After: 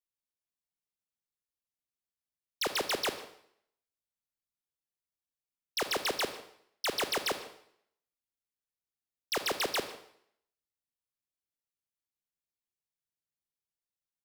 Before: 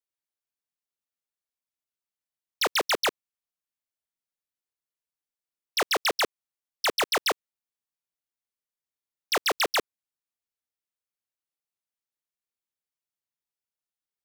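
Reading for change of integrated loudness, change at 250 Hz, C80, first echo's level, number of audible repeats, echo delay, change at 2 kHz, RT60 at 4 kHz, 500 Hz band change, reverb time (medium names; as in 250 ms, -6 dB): -6.5 dB, -3.0 dB, 12.5 dB, -21.0 dB, 1, 152 ms, -8.0 dB, 0.65 s, -5.5 dB, 0.65 s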